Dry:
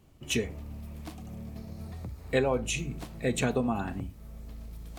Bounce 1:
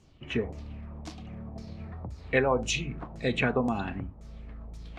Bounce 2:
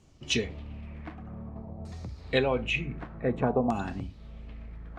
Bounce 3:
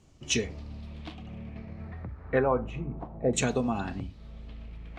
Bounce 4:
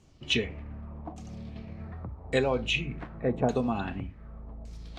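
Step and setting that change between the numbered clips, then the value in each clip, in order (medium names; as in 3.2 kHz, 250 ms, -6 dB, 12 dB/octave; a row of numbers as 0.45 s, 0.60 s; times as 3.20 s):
LFO low-pass, rate: 1.9 Hz, 0.54 Hz, 0.3 Hz, 0.86 Hz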